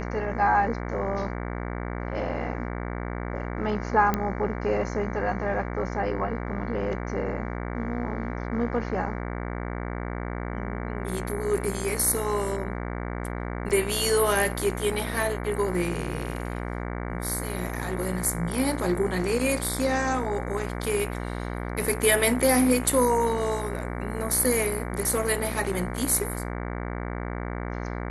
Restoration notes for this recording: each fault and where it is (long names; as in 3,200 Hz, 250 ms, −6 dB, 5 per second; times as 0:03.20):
mains buzz 60 Hz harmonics 38 −32 dBFS
0:04.14: click −11 dBFS
0:13.69–0:13.70: drop-out 7.3 ms